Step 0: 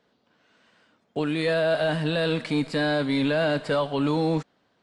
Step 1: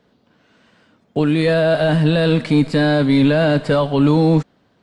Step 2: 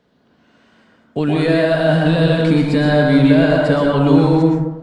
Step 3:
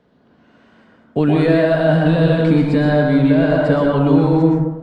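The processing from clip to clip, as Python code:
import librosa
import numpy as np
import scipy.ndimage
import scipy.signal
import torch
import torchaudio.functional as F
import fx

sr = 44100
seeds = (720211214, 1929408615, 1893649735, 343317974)

y1 = fx.low_shelf(x, sr, hz=310.0, db=10.0)
y1 = F.gain(torch.from_numpy(y1), 5.0).numpy()
y2 = fx.rev_plate(y1, sr, seeds[0], rt60_s=0.95, hf_ratio=0.35, predelay_ms=105, drr_db=-1.5)
y2 = F.gain(torch.from_numpy(y2), -2.0).numpy()
y3 = fx.high_shelf(y2, sr, hz=2900.0, db=-10.0)
y3 = fx.rider(y3, sr, range_db=10, speed_s=0.5)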